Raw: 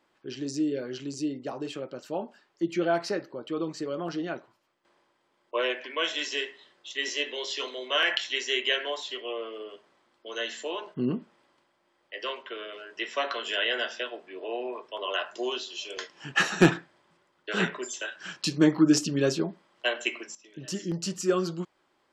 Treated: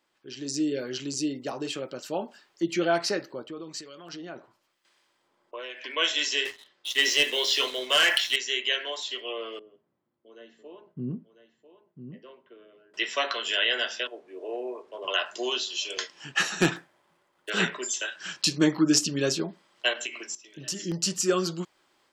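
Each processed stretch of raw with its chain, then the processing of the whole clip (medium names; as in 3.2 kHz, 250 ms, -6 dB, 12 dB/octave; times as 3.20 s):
3.43–5.84 s: compression 2.5:1, threshold -38 dBFS + harmonic tremolo 1 Hz, crossover 1.5 kHz
6.45–8.36 s: low-pass 5.5 kHz + waveshaping leveller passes 2
9.59–12.94 s: band-pass filter 130 Hz, Q 1.4 + delay 997 ms -10 dB
14.07–15.08 s: one-bit delta coder 64 kbps, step -49.5 dBFS + band-pass filter 410 Hz, Q 1.1
16.76–17.50 s: median filter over 9 samples + peaking EQ 700 Hz +4 dB 1.5 oct
19.93–20.81 s: compression 5:1, threshold -33 dBFS + hum notches 60/120/180/240/300/360/420 Hz
whole clip: treble shelf 2.4 kHz +9.5 dB; level rider gain up to 8.5 dB; trim -7.5 dB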